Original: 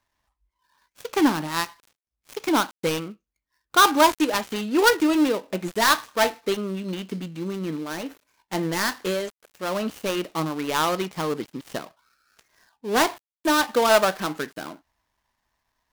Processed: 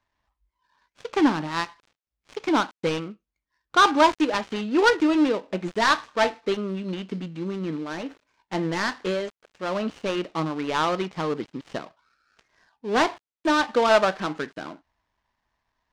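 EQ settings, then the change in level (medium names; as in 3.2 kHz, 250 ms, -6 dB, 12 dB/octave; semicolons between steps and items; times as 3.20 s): distance through air 110 m; 0.0 dB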